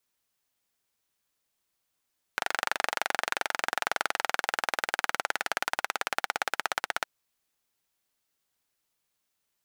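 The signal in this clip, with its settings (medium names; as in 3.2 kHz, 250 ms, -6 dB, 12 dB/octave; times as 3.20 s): single-cylinder engine model, changing speed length 4.66 s, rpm 2900, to 1900, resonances 820/1400 Hz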